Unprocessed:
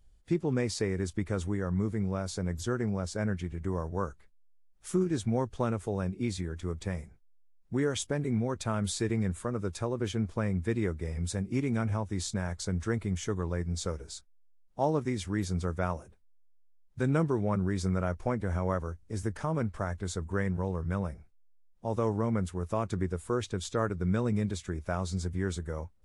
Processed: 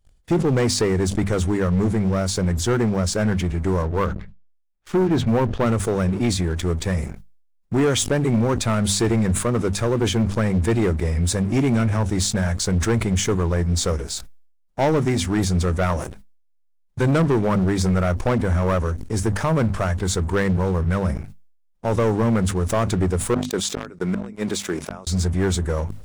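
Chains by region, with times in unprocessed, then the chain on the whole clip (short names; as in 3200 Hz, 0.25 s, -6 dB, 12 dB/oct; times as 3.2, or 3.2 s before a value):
3.82–5.66 gate -50 dBFS, range -8 dB + LPF 3100 Hz + notches 60/120/180 Hz
23.34–25.07 HPF 270 Hz + flipped gate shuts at -23 dBFS, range -35 dB
whole clip: notches 50/100/150/200/250 Hz; sample leveller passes 3; sustainer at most 80 dB/s; gain +3 dB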